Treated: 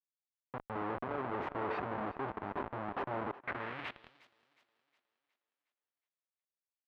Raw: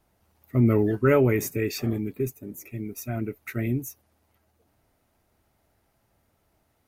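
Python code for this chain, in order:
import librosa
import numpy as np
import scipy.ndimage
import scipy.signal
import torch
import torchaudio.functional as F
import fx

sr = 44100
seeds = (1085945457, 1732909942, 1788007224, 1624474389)

y = fx.peak_eq(x, sr, hz=77.0, db=11.0, octaves=0.64)
y = fx.over_compress(y, sr, threshold_db=-24.0, ratio=-0.5)
y = fx.echo_tape(y, sr, ms=394, feedback_pct=82, wet_db=-15.0, lp_hz=1300.0, drive_db=8.0, wow_cents=16)
y = fx.schmitt(y, sr, flips_db=-31.5)
y = fx.air_absorb(y, sr, metres=490.0)
y = fx.echo_thinned(y, sr, ms=363, feedback_pct=49, hz=150.0, wet_db=-16.5)
y = fx.filter_sweep_bandpass(y, sr, from_hz=1000.0, to_hz=6000.0, start_s=3.36, end_s=4.29, q=1.2)
y = y * 10.0 ** (4.0 / 20.0)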